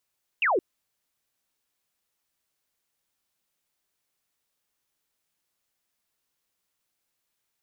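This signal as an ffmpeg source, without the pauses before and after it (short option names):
-f lavfi -i "aevalsrc='0.1*clip(t/0.002,0,1)*clip((0.17-t)/0.002,0,1)*sin(2*PI*2900*0.17/log(320/2900)*(exp(log(320/2900)*t/0.17)-1))':d=0.17:s=44100"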